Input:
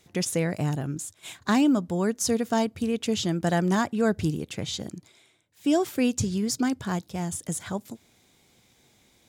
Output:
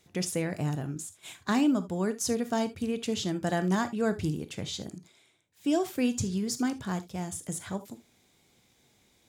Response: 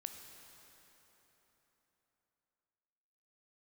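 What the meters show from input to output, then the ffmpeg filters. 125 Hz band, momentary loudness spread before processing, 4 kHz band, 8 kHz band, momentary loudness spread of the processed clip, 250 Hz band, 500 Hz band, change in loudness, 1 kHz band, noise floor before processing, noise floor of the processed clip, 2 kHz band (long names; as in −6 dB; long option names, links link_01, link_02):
−4.0 dB, 12 LU, −4.0 dB, −4.0 dB, 12 LU, −4.0 dB, −4.0 dB, −4.0 dB, −4.0 dB, −63 dBFS, −67 dBFS, −4.0 dB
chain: -filter_complex "[1:a]atrim=start_sample=2205,afade=type=out:start_time=0.13:duration=0.01,atrim=end_sample=6174[link_01];[0:a][link_01]afir=irnorm=-1:irlink=0"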